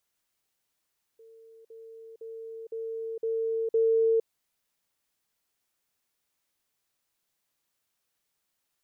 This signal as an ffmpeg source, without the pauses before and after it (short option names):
-f lavfi -i "aevalsrc='pow(10,(-50+6*floor(t/0.51))/20)*sin(2*PI*451*t)*clip(min(mod(t,0.51),0.46-mod(t,0.51))/0.005,0,1)':d=3.06:s=44100"